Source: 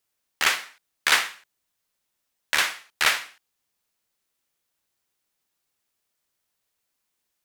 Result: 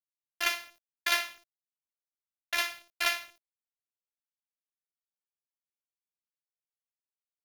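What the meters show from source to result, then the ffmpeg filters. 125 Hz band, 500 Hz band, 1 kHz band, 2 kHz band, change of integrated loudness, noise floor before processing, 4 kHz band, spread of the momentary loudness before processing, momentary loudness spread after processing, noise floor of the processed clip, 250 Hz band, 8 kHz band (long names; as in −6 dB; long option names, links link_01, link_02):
can't be measured, −4.0 dB, −7.5 dB, −8.0 dB, −7.5 dB, −79 dBFS, −7.5 dB, 8 LU, 8 LU, below −85 dBFS, −6.0 dB, −9.0 dB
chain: -af "highshelf=frequency=4200:gain=6,afftfilt=real='hypot(re,im)*cos(PI*b)':imag='0':win_size=512:overlap=0.75,acrusher=bits=7:mix=0:aa=0.000001,equalizer=frequency=630:width_type=o:width=0.33:gain=9,equalizer=frequency=2500:width_type=o:width=0.33:gain=3,equalizer=frequency=8000:width_type=o:width=0.33:gain=-12,volume=-6.5dB"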